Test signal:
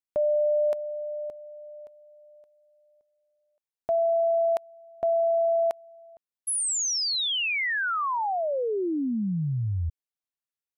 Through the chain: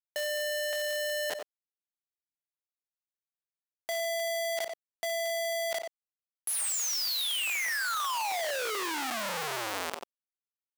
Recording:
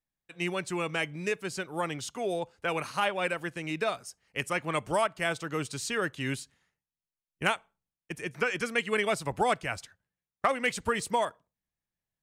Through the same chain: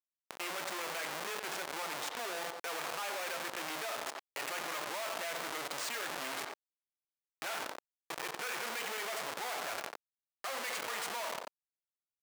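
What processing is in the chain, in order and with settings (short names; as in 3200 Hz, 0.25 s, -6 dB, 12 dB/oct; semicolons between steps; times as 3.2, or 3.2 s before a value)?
two-slope reverb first 0.85 s, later 3 s, DRR 7.5 dB; Schmitt trigger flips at -35 dBFS; speakerphone echo 90 ms, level -11 dB; bit-crush 11-bit; HPF 710 Hz 12 dB/oct; fast leveller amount 70%; gain -5 dB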